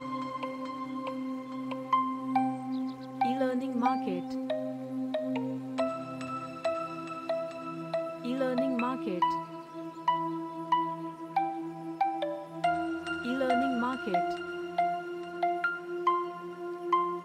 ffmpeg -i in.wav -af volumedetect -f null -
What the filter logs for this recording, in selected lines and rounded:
mean_volume: -32.2 dB
max_volume: -15.4 dB